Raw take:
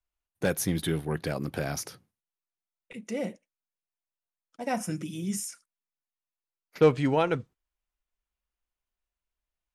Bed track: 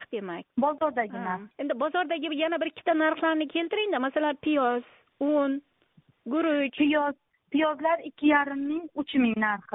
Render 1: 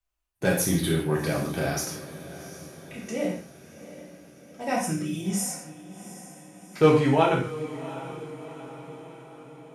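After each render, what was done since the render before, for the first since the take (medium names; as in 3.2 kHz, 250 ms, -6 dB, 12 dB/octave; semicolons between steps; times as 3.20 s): echo that smears into a reverb 736 ms, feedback 56%, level -14.5 dB; gated-style reverb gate 190 ms falling, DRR -3 dB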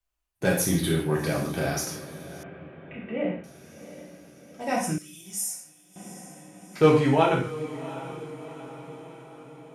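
2.43–3.44 s: steep low-pass 3 kHz 48 dB/octave; 4.98–5.96 s: pre-emphasis filter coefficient 0.9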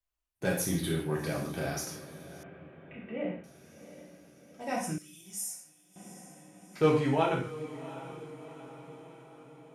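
trim -6.5 dB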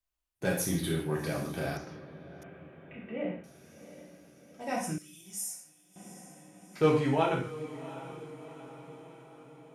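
1.77–2.42 s: distance through air 320 m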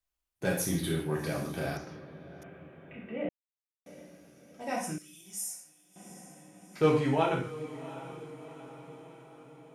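3.29–3.86 s: mute; 4.71–6.10 s: bass shelf 120 Hz -9 dB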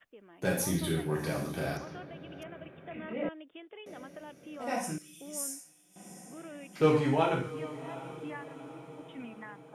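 add bed track -21 dB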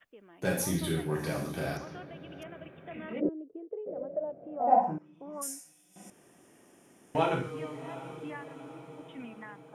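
3.19–5.41 s: resonant low-pass 370 Hz -> 1.1 kHz, resonance Q 6.3; 6.10–7.15 s: room tone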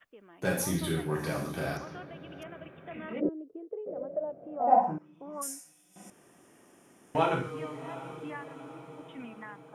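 peaking EQ 1.2 kHz +3.5 dB 0.81 oct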